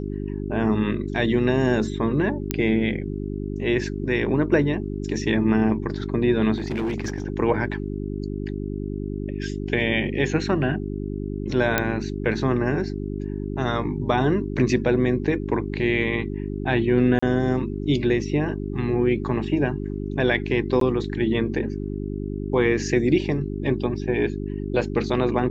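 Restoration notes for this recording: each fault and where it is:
mains hum 50 Hz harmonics 8 −29 dBFS
0:02.51: click −6 dBFS
0:06.58–0:07.26: clipping −21.5 dBFS
0:11.78: click −4 dBFS
0:17.19–0:17.23: drop-out 35 ms
0:20.80–0:20.81: drop-out 13 ms

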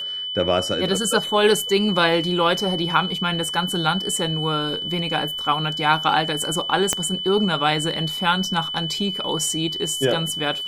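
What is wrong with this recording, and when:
whistle 3,000 Hz −26 dBFS
0:06.93: click −5 dBFS

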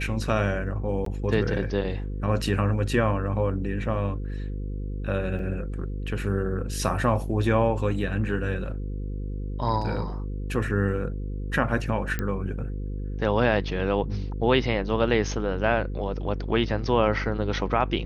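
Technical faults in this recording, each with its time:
mains buzz 50 Hz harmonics 10 −31 dBFS
0:01.05–0:01.06: drop-out 13 ms
0:05.39: drop-out 2.8 ms
0:12.19: click −14 dBFS

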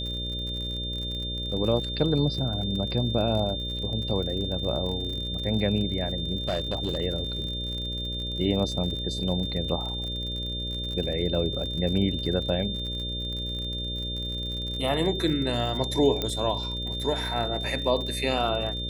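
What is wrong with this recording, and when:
mains buzz 60 Hz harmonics 10 −34 dBFS
surface crackle 52 per second −33 dBFS
whistle 3,600 Hz −32 dBFS
0:06.48–0:07.00: clipping −22 dBFS
0:16.22: click −13 dBFS

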